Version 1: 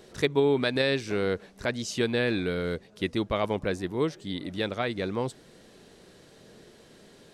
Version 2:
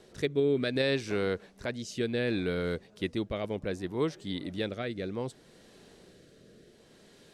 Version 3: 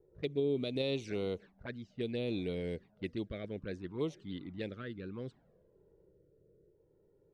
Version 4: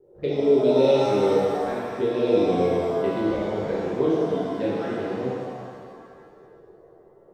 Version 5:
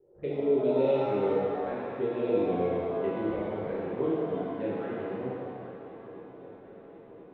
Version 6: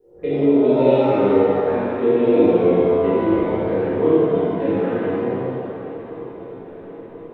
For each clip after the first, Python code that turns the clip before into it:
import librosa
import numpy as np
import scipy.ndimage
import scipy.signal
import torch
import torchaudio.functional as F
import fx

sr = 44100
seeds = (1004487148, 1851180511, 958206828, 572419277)

y1 = fx.rotary(x, sr, hz=0.65)
y1 = y1 * 10.0 ** (-1.5 / 20.0)
y2 = fx.env_lowpass(y1, sr, base_hz=410.0, full_db=-26.0)
y2 = fx.env_flanger(y2, sr, rest_ms=2.3, full_db=-26.5)
y2 = y2 * 10.0 ** (-5.0 / 20.0)
y3 = fx.peak_eq(y2, sr, hz=510.0, db=12.0, octaves=2.7)
y3 = fx.rev_shimmer(y3, sr, seeds[0], rt60_s=2.0, semitones=7, shimmer_db=-8, drr_db=-8.0)
y3 = y3 * 10.0 ** (-3.0 / 20.0)
y4 = scipy.signal.sosfilt(scipy.signal.butter(4, 2900.0, 'lowpass', fs=sr, output='sos'), y3)
y4 = fx.echo_swing(y4, sr, ms=1032, ratio=3, feedback_pct=63, wet_db=-17.5)
y4 = y4 * 10.0 ** (-7.0 / 20.0)
y5 = fx.room_shoebox(y4, sr, seeds[1], volume_m3=260.0, walls='mixed', distance_m=1.8)
y5 = y5 * 10.0 ** (5.5 / 20.0)